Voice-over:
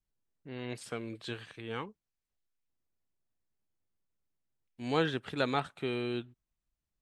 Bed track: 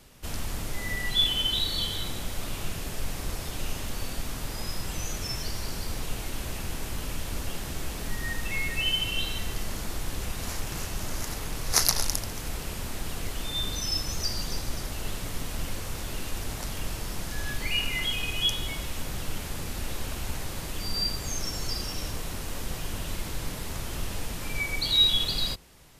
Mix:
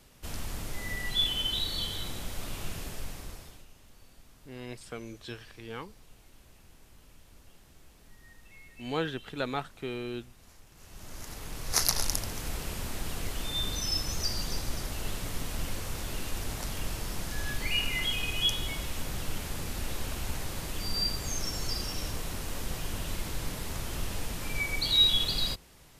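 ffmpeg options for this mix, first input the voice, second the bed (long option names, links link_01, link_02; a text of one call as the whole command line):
ffmpeg -i stem1.wav -i stem2.wav -filter_complex "[0:a]adelay=4000,volume=-2dB[link_01];[1:a]volume=17.5dB,afade=type=out:start_time=2.8:duration=0.86:silence=0.112202,afade=type=in:start_time=10.76:duration=1.41:silence=0.0841395[link_02];[link_01][link_02]amix=inputs=2:normalize=0" out.wav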